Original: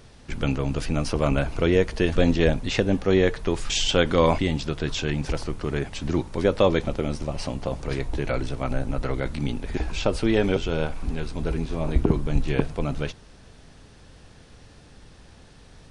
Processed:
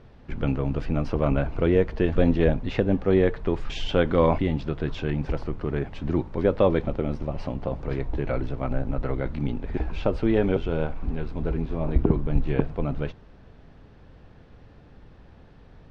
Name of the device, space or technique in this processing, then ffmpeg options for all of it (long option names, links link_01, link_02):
phone in a pocket: -af "lowpass=3700,highshelf=frequency=2200:gain=-11.5"